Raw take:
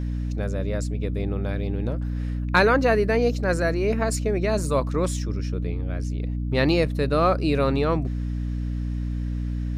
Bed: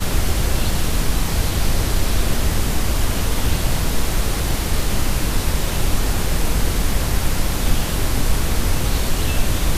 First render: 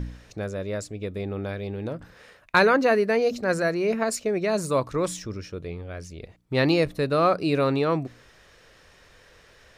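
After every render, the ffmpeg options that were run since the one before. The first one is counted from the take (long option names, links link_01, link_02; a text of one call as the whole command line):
ffmpeg -i in.wav -af "bandreject=frequency=60:width_type=h:width=4,bandreject=frequency=120:width_type=h:width=4,bandreject=frequency=180:width_type=h:width=4,bandreject=frequency=240:width_type=h:width=4,bandreject=frequency=300:width_type=h:width=4" out.wav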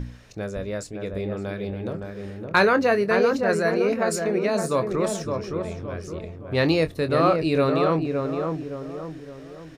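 ffmpeg -i in.wav -filter_complex "[0:a]asplit=2[link_01][link_02];[link_02]adelay=25,volume=-11.5dB[link_03];[link_01][link_03]amix=inputs=2:normalize=0,asplit=2[link_04][link_05];[link_05]adelay=565,lowpass=frequency=1300:poles=1,volume=-4dB,asplit=2[link_06][link_07];[link_07]adelay=565,lowpass=frequency=1300:poles=1,volume=0.46,asplit=2[link_08][link_09];[link_09]adelay=565,lowpass=frequency=1300:poles=1,volume=0.46,asplit=2[link_10][link_11];[link_11]adelay=565,lowpass=frequency=1300:poles=1,volume=0.46,asplit=2[link_12][link_13];[link_13]adelay=565,lowpass=frequency=1300:poles=1,volume=0.46,asplit=2[link_14][link_15];[link_15]adelay=565,lowpass=frequency=1300:poles=1,volume=0.46[link_16];[link_04][link_06][link_08][link_10][link_12][link_14][link_16]amix=inputs=7:normalize=0" out.wav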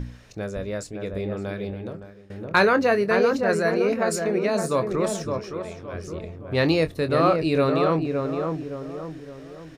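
ffmpeg -i in.wav -filter_complex "[0:a]asettb=1/sr,asplit=3[link_01][link_02][link_03];[link_01]atrim=end=5.394[link_04];[link_02]atrim=start=5.39:end=5.94,asetpts=PTS-STARTPTS,afade=type=in:duration=0.004:curve=qsin,afade=type=out:start_time=0.546:duration=0.004:curve=qsin,lowshelf=frequency=320:gain=-8.5[link_05];[link_03]atrim=start=5.936[link_06];[link_04][link_05]acrossfade=duration=0.004:curve1=hsin:curve2=qsin[link_07];[link_07][link_06]acrossfade=duration=0.004:curve1=qsin:curve2=hsin,asplit=2[link_08][link_09];[link_08]atrim=end=2.3,asetpts=PTS-STARTPTS,afade=type=out:start_time=1.6:duration=0.7:silence=0.0891251[link_10];[link_09]atrim=start=2.3,asetpts=PTS-STARTPTS,afade=type=in:duration=0.004:curve=hsin:silence=0.0891251[link_11];[link_10][link_11]concat=n=2:v=0:a=1" out.wav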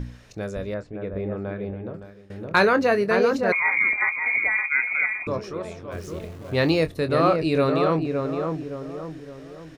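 ffmpeg -i in.wav -filter_complex "[0:a]asettb=1/sr,asplit=3[link_01][link_02][link_03];[link_01]atrim=end=0.744[link_04];[link_02]atrim=start=0.74:end=1.94,asetpts=PTS-STARTPTS,afade=type=in:duration=0.004:curve=qsin,afade=type=out:start_time=1.196:duration=0.004:curve=qsin,lowpass=1900[link_05];[link_03]atrim=start=1.936[link_06];[link_04][link_05]acrossfade=duration=0.004:curve1=hsin:curve2=qsin[link_07];[link_07][link_06]acrossfade=duration=0.004:curve1=qsin:curve2=hsin,asettb=1/sr,asplit=3[link_08][link_09][link_10];[link_08]atrim=end=3.524[link_11];[link_09]atrim=start=3.52:end=5.27,asetpts=PTS-STARTPTS,afade=type=in:duration=0.004:curve=qsin,afade=type=out:start_time=1.746:duration=0.004:curve=qsin,lowpass=frequency=2200:width_type=q:width=0.5098,lowpass=frequency=2200:width_type=q:width=0.6013,lowpass=frequency=2200:width_type=q:width=0.9,lowpass=frequency=2200:width_type=q:width=2.563,afreqshift=-2600[link_12];[link_10]atrim=start=5.266[link_13];[link_11][link_12]acrossfade=duration=0.004:curve1=hsin:curve2=qsin[link_14];[link_14][link_13]acrossfade=duration=0.004:curve1=qsin:curve2=hsin,asplit=3[link_15][link_16][link_17];[link_15]afade=type=out:start_time=5.91:duration=0.02[link_18];[link_16]aeval=exprs='val(0)*gte(abs(val(0)),0.00708)':channel_layout=same,afade=type=in:start_time=5.91:duration=0.02,afade=type=out:start_time=6.85:duration=0.02[link_19];[link_17]afade=type=in:start_time=6.85:duration=0.02[link_20];[link_18][link_19][link_20]amix=inputs=3:normalize=0" out.wav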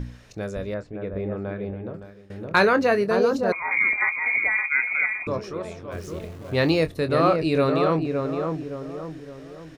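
ffmpeg -i in.wav -filter_complex "[0:a]asettb=1/sr,asplit=3[link_01][link_02][link_03];[link_01]atrim=end=3.074[link_04];[link_02]atrim=start=3.07:end=3.71,asetpts=PTS-STARTPTS,afade=type=in:duration=0.004:curve=qsin,afade=type=out:start_time=0.636:duration=0.004:curve=qsin,equalizer=frequency=2100:width_type=o:width=0.75:gain=-10.5[link_05];[link_03]atrim=start=3.706[link_06];[link_04][link_05]acrossfade=duration=0.004:curve1=hsin:curve2=qsin[link_07];[link_07][link_06]acrossfade=duration=0.004:curve1=qsin:curve2=hsin" out.wav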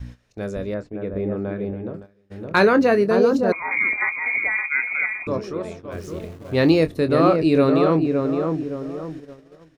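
ffmpeg -i in.wav -af "agate=range=-14dB:threshold=-38dB:ratio=16:detection=peak,adynamicequalizer=threshold=0.0158:dfrequency=280:dqfactor=0.93:tfrequency=280:tqfactor=0.93:attack=5:release=100:ratio=0.375:range=3.5:mode=boostabove:tftype=bell" out.wav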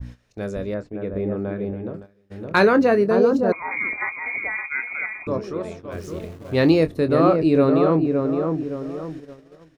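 ffmpeg -i in.wav -af "adynamicequalizer=threshold=0.0178:dfrequency=1700:dqfactor=0.7:tfrequency=1700:tqfactor=0.7:attack=5:release=100:ratio=0.375:range=3.5:mode=cutabove:tftype=highshelf" out.wav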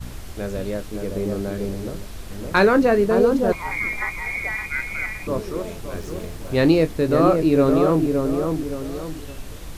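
ffmpeg -i in.wav -i bed.wav -filter_complex "[1:a]volume=-17.5dB[link_01];[0:a][link_01]amix=inputs=2:normalize=0" out.wav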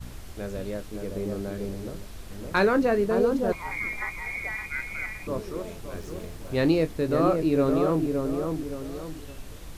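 ffmpeg -i in.wav -af "volume=-6dB" out.wav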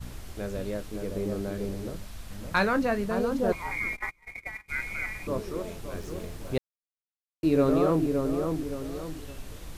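ffmpeg -i in.wav -filter_complex "[0:a]asettb=1/sr,asplit=3[link_01][link_02][link_03];[link_01]atrim=end=1.964[link_04];[link_02]atrim=start=1.96:end=3.4,asetpts=PTS-STARTPTS,afade=type=in:duration=0.004:curve=qsin,afade=type=out:start_time=1.436:duration=0.004:curve=qsin,equalizer=frequency=390:width_type=o:width=0.74:gain=-10[link_05];[link_03]atrim=start=3.396[link_06];[link_04][link_05]acrossfade=duration=0.004:curve1=hsin:curve2=qsin[link_07];[link_07][link_06]acrossfade=duration=0.004:curve1=qsin:curve2=hsin,asplit=3[link_08][link_09][link_10];[link_08]afade=type=out:start_time=3.95:duration=0.02[link_11];[link_09]agate=range=-29dB:threshold=-32dB:ratio=16:release=100:detection=peak,afade=type=in:start_time=3.95:duration=0.02,afade=type=out:start_time=4.68:duration=0.02[link_12];[link_10]afade=type=in:start_time=4.68:duration=0.02[link_13];[link_11][link_12][link_13]amix=inputs=3:normalize=0,asplit=3[link_14][link_15][link_16];[link_14]atrim=end=6.58,asetpts=PTS-STARTPTS,afade=type=out:start_time=6.576:duration=0.004:curve=hsin[link_17];[link_15]atrim=start=6.58:end=7.43,asetpts=PTS-STARTPTS,volume=0[link_18];[link_16]atrim=start=7.43,asetpts=PTS-STARTPTS,afade=type=in:duration=0.004:curve=hsin[link_19];[link_17][link_18][link_19]concat=n=3:v=0:a=1" out.wav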